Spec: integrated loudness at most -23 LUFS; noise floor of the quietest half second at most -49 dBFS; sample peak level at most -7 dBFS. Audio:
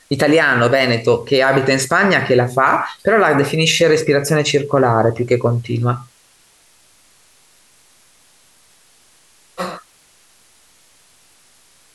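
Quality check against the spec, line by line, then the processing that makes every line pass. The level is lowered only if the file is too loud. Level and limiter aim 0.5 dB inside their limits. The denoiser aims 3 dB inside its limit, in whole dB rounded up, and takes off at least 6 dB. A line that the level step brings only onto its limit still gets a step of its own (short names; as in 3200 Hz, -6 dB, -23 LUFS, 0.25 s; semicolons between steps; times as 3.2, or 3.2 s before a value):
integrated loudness -15.0 LUFS: fail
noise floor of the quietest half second -53 dBFS: OK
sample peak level -3.5 dBFS: fail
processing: gain -8.5 dB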